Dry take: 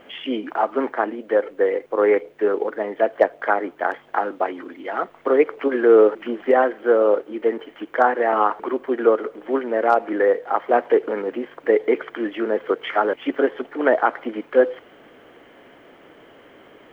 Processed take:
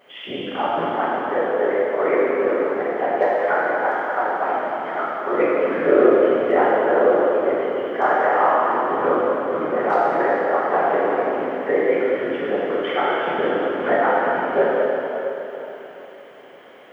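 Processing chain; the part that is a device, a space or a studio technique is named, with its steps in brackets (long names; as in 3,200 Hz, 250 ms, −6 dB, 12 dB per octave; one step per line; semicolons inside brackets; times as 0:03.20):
whispering ghost (random phases in short frames; high-pass filter 410 Hz 6 dB per octave; convolution reverb RT60 3.7 s, pre-delay 3 ms, DRR −8.5 dB)
level −6 dB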